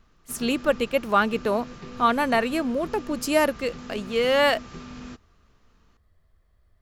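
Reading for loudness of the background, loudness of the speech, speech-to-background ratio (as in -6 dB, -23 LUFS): -41.5 LUFS, -24.0 LUFS, 17.5 dB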